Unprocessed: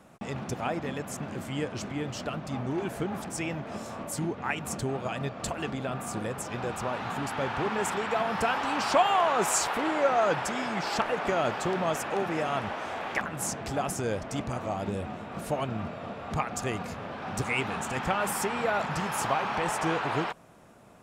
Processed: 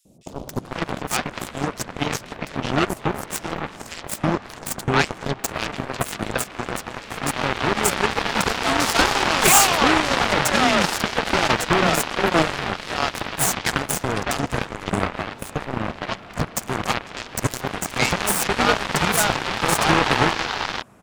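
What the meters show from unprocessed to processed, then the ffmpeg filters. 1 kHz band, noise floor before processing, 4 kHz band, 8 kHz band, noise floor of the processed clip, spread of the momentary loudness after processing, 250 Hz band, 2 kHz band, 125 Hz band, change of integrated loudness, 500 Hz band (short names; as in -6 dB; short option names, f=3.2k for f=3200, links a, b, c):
+6.5 dB, -42 dBFS, +14.0 dB, +11.5 dB, -41 dBFS, 12 LU, +7.5 dB, +10.5 dB, +7.5 dB, +8.5 dB, +5.0 dB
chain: -filter_complex "[0:a]aeval=exprs='0.299*sin(PI/2*3.98*val(0)/0.299)':c=same,acrossover=split=560|3900[a][b][c];[a]adelay=50[d];[b]adelay=500[e];[d][e][c]amix=inputs=3:normalize=0,aeval=exprs='0.794*(cos(1*acos(clip(val(0)/0.794,-1,1)))-cos(1*PI/2))+0.141*(cos(7*acos(clip(val(0)/0.794,-1,1)))-cos(7*PI/2))':c=same,volume=1dB"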